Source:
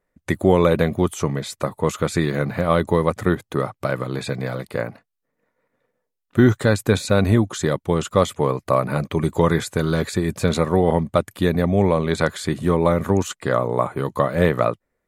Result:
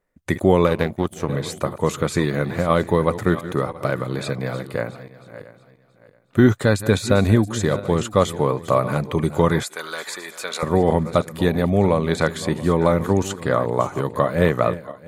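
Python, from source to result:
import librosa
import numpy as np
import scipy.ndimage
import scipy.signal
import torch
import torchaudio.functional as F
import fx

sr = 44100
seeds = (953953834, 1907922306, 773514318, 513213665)

y = fx.reverse_delay_fb(x, sr, ms=339, feedback_pct=47, wet_db=-13.5)
y = fx.power_curve(y, sr, exponent=1.4, at=(0.66, 1.29))
y = fx.highpass(y, sr, hz=890.0, slope=12, at=(9.63, 10.63))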